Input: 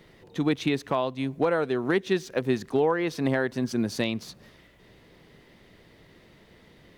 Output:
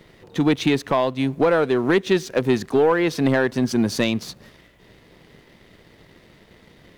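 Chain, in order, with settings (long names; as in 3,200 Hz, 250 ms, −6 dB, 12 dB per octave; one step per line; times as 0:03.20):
leveller curve on the samples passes 1
level +4 dB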